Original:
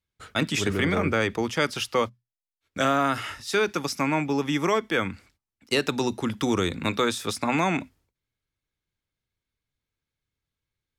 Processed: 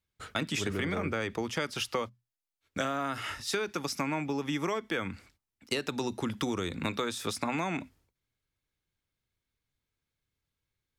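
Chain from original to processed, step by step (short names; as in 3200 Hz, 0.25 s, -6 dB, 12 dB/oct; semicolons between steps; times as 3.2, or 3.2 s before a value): compressor 5:1, threshold -29 dBFS, peak gain reduction 10.5 dB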